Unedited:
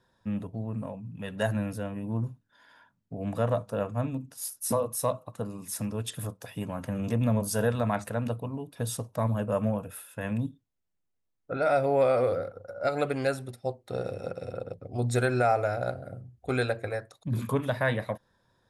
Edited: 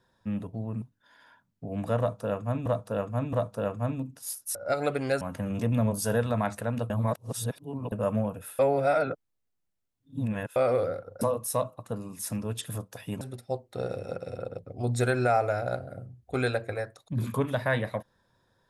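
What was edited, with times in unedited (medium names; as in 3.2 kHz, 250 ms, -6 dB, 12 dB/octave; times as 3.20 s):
0.82–2.31 s: delete
3.48–4.15 s: loop, 3 plays
4.70–6.70 s: swap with 12.70–13.36 s
8.39–9.41 s: reverse
10.08–12.05 s: reverse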